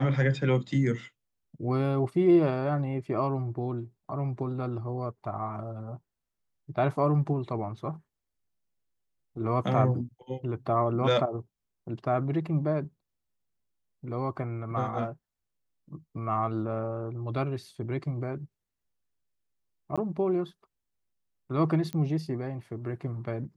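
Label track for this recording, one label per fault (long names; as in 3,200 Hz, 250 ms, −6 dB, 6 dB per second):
19.960000	19.980000	drop-out 16 ms
21.930000	21.930000	click −20 dBFS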